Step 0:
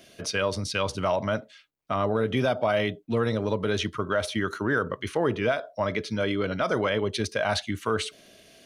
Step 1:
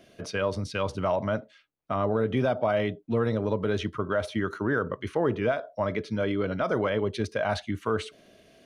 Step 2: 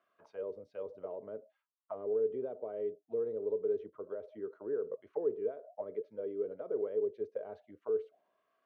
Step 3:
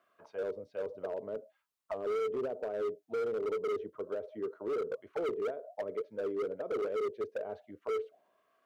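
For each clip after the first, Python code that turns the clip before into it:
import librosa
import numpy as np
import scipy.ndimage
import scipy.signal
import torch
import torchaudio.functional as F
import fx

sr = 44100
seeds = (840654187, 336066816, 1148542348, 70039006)

y1 = fx.high_shelf(x, sr, hz=2400.0, db=-11.0)
y2 = fx.auto_wah(y1, sr, base_hz=430.0, top_hz=1200.0, q=8.5, full_db=-24.0, direction='down')
y2 = y2 * 10.0 ** (-1.5 / 20.0)
y3 = np.clip(y2, -10.0 ** (-35.5 / 20.0), 10.0 ** (-35.5 / 20.0))
y3 = y3 * 10.0 ** (5.0 / 20.0)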